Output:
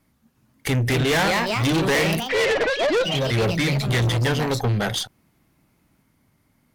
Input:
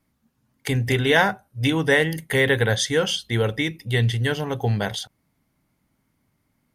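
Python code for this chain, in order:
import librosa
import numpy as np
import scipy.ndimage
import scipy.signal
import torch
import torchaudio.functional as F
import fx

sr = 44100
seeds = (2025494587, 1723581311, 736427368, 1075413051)

y = fx.sine_speech(x, sr, at=(2.2, 3.24))
y = fx.echo_pitch(y, sr, ms=358, semitones=3, count=3, db_per_echo=-6.0)
y = fx.tube_stage(y, sr, drive_db=25.0, bias=0.45)
y = y * librosa.db_to_amplitude(7.5)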